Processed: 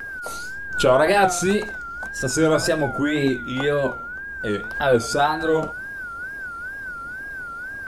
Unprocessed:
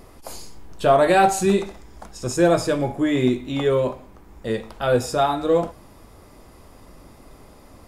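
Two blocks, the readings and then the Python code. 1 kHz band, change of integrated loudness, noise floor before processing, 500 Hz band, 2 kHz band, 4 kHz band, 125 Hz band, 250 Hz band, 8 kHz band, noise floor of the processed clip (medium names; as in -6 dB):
-0.5 dB, -2.0 dB, -48 dBFS, -0.5 dB, +7.5 dB, +2.5 dB, -1.0 dB, -1.5 dB, +3.0 dB, -33 dBFS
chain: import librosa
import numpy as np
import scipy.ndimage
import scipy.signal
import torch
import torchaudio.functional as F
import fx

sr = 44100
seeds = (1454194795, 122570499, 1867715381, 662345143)

y = x + 10.0 ** (-28.0 / 20.0) * np.sin(2.0 * np.pi * 1500.0 * np.arange(len(x)) / sr)
y = fx.wow_flutter(y, sr, seeds[0], rate_hz=2.1, depth_cents=140.0)
y = fx.hpss(y, sr, part='percussive', gain_db=5)
y = fx.pre_swell(y, sr, db_per_s=110.0)
y = y * 10.0 ** (-2.5 / 20.0)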